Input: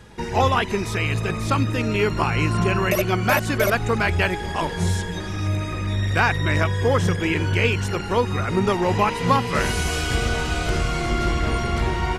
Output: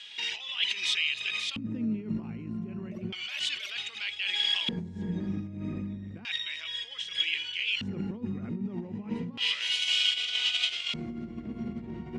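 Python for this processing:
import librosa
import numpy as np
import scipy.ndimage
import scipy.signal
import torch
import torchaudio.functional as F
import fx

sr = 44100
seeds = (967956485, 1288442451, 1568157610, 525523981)

y = fx.over_compress(x, sr, threshold_db=-27.0, ratio=-1.0)
y = fx.band_shelf(y, sr, hz=4200.0, db=9.5, octaves=2.5)
y = fx.filter_lfo_bandpass(y, sr, shape='square', hz=0.32, low_hz=220.0, high_hz=3200.0, q=4.6)
y = F.gain(torch.from_numpy(y), 2.5).numpy()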